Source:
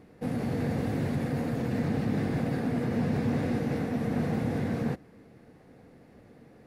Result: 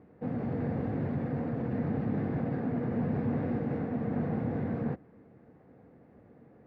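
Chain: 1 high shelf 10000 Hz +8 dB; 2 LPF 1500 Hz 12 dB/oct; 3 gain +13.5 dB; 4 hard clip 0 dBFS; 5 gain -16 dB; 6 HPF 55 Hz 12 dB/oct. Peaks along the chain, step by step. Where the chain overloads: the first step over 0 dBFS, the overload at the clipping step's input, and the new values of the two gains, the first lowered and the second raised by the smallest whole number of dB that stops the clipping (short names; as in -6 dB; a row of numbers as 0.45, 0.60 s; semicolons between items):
-17.5, -17.5, -4.0, -4.0, -20.0, -20.0 dBFS; no overload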